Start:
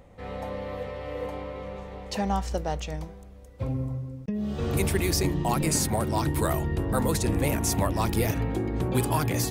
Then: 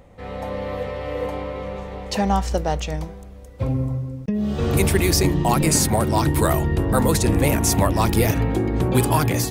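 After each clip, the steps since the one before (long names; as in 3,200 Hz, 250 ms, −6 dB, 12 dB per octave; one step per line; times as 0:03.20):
automatic gain control gain up to 3.5 dB
level +3.5 dB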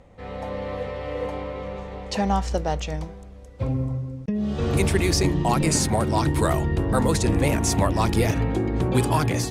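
low-pass filter 8,700 Hz 12 dB per octave
level −2.5 dB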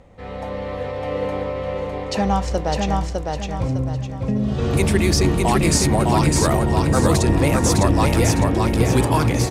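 repeating echo 606 ms, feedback 37%, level −3 dB
level +2.5 dB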